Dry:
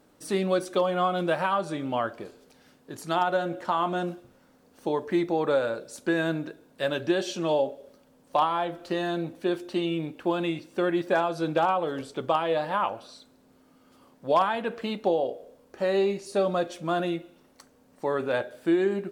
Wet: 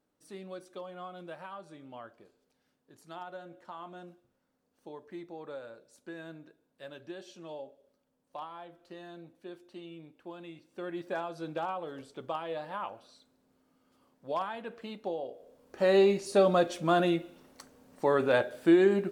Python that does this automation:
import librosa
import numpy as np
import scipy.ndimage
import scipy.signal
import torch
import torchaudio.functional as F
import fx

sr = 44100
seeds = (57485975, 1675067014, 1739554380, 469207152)

y = fx.gain(x, sr, db=fx.line((10.46, -18.5), (11.04, -11.0), (15.29, -11.0), (15.9, 1.5)))